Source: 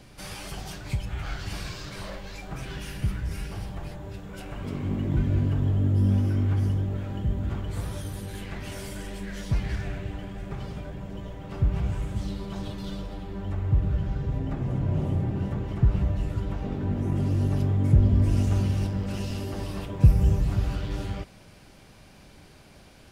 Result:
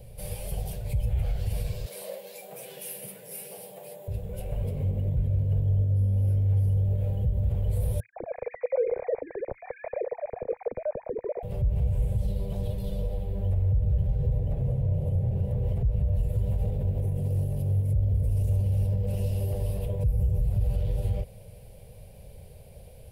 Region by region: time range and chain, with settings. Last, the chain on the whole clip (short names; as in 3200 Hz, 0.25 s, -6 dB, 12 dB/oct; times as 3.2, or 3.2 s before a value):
1.86–4.08 Bessel high-pass 340 Hz, order 8 + high shelf 5600 Hz +9 dB
8–11.43 sine-wave speech + brick-wall FIR low-pass 2500 Hz + tilt -2 dB/oct
16.14–18.56 high shelf 5200 Hz +6 dB + echo 0.293 s -6.5 dB
whole clip: compressor, threshold -24 dBFS; limiter -25 dBFS; EQ curve 110 Hz 0 dB, 210 Hz -12 dB, 310 Hz -25 dB, 490 Hz +2 dB, 1300 Hz -27 dB, 2400 Hz -15 dB, 3900 Hz -16 dB, 6300 Hz -19 dB, 11000 Hz 0 dB; gain +8 dB